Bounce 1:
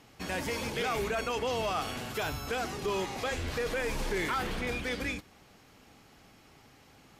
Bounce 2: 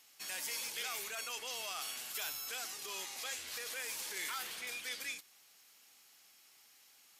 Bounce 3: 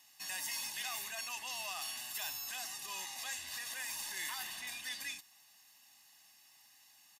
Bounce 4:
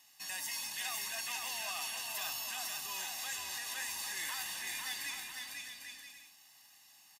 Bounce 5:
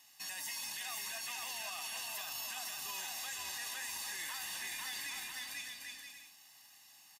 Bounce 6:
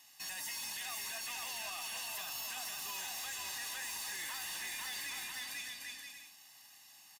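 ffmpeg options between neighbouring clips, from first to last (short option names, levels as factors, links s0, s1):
-af "aderivative,volume=1.5"
-af "aecho=1:1:1.1:0.97,volume=0.75"
-af "aecho=1:1:500|800|980|1088|1153:0.631|0.398|0.251|0.158|0.1"
-af "alimiter=level_in=2.99:limit=0.0631:level=0:latency=1:release=30,volume=0.335,volume=1.12"
-af "asoftclip=type=hard:threshold=0.0112,volume=1.19"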